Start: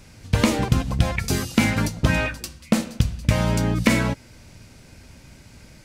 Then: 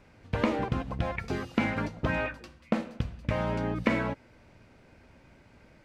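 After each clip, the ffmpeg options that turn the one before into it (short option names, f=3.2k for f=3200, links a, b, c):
-filter_complex "[0:a]bass=f=250:g=-9,treble=f=4k:g=-11,acrossover=split=7000[a][b];[b]acompressor=threshold=-52dB:ratio=4:attack=1:release=60[c];[a][c]amix=inputs=2:normalize=0,highshelf=f=2.7k:g=-10,volume=-3.5dB"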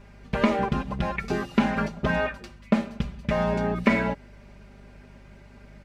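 -af "aecho=1:1:5:0.85,aeval=exprs='val(0)+0.00282*(sin(2*PI*50*n/s)+sin(2*PI*2*50*n/s)/2+sin(2*PI*3*50*n/s)/3+sin(2*PI*4*50*n/s)/4+sin(2*PI*5*50*n/s)/5)':c=same,volume=2.5dB"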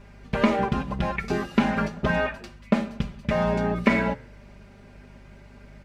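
-af "flanger=delay=6.7:depth=5.8:regen=-87:speed=0.36:shape=triangular,volume=5.5dB"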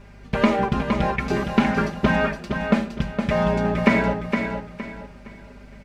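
-af "aecho=1:1:464|928|1392|1856:0.501|0.155|0.0482|0.0149,volume=2.5dB"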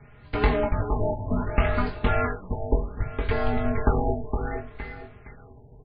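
-filter_complex "[0:a]afreqshift=-170,asplit=2[a][b];[b]adelay=21,volume=-6dB[c];[a][c]amix=inputs=2:normalize=0,afftfilt=real='re*lt(b*sr/1024,960*pow(5100/960,0.5+0.5*sin(2*PI*0.66*pts/sr)))':imag='im*lt(b*sr/1024,960*pow(5100/960,0.5+0.5*sin(2*PI*0.66*pts/sr)))':win_size=1024:overlap=0.75,volume=-3.5dB"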